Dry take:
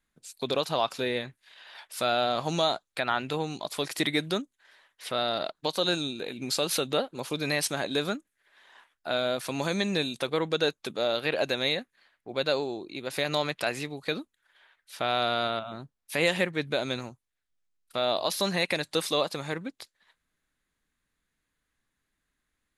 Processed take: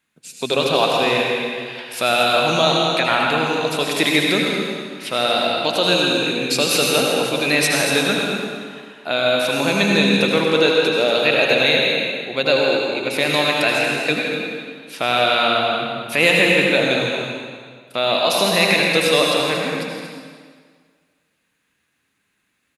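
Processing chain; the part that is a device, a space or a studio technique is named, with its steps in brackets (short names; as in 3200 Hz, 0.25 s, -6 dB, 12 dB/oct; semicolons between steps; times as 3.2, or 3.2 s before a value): stadium PA (HPF 120 Hz; bell 2600 Hz +8 dB 0.35 oct; loudspeakers at several distances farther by 56 m -10 dB, 80 m -9 dB; reverb RT60 1.8 s, pre-delay 72 ms, DRR -0.5 dB); gain +7 dB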